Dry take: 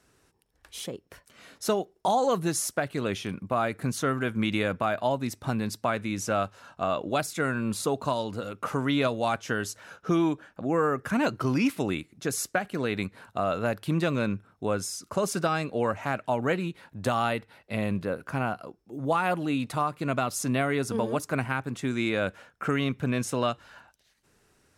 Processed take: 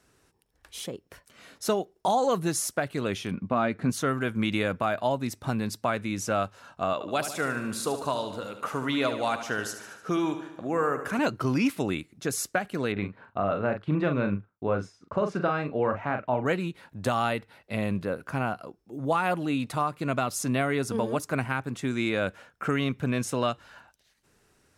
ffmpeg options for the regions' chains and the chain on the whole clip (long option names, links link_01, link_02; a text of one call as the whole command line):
ffmpeg -i in.wav -filter_complex "[0:a]asettb=1/sr,asplit=3[link_01][link_02][link_03];[link_01]atrim=end=3.314[link_04];[link_02]atrim=start=3.31:end=3.9,asetpts=PTS-STARTPTS,afade=type=in:duration=0.004:curve=qsin,afade=type=out:start_time=0.586:duration=0.004:curve=qsin,lowpass=4400,equalizer=frequency=220:width=2.2:gain=6.5,asplit=2[link_05][link_06];[link_06]adelay=12,volume=-13.5dB[link_07];[link_05][link_07]amix=inputs=2:normalize=0,atrim=end_sample=26019[link_08];[link_03]atrim=start=3.896[link_09];[link_04][link_08]acrossfade=duration=0.004:curve1=hsin:curve2=qsin[link_10];[link_10][link_09]acrossfade=duration=0.004:curve1=qsin:curve2=hsin,asettb=1/sr,asplit=3[link_11][link_12][link_13];[link_11]atrim=end=6.934[link_14];[link_12]atrim=start=6.93:end=11.19,asetpts=PTS-STARTPTS,afade=type=in:duration=0.004:curve=qsin,afade=type=out:start_time=4.256:duration=0.004:curve=qsin,lowshelf=frequency=290:gain=-7,aecho=1:1:74|148|222|296|370|444|518:0.316|0.187|0.11|0.0649|0.0383|0.0226|0.0133,atrim=end_sample=187866[link_15];[link_13]atrim=start=11.186[link_16];[link_14][link_15]acrossfade=duration=0.004:curve1=hsin:curve2=qsin[link_17];[link_17][link_16]acrossfade=duration=0.004:curve1=qsin:curve2=hsin,asettb=1/sr,asplit=3[link_18][link_19][link_20];[link_18]atrim=end=12.924[link_21];[link_19]atrim=start=12.92:end=16.46,asetpts=PTS-STARTPTS,afade=type=in:duration=0.004:curve=qsin,afade=type=out:start_time=3.536:duration=0.004:curve=qsin,lowpass=2200,agate=range=-33dB:threshold=-48dB:ratio=3:release=100:detection=peak,asplit=2[link_22][link_23];[link_23]adelay=40,volume=-7dB[link_24];[link_22][link_24]amix=inputs=2:normalize=0,atrim=end_sample=156114[link_25];[link_20]atrim=start=16.456[link_26];[link_21][link_25]acrossfade=duration=0.004:curve1=hsin:curve2=qsin[link_27];[link_27][link_26]acrossfade=duration=0.004:curve1=qsin:curve2=hsin" out.wav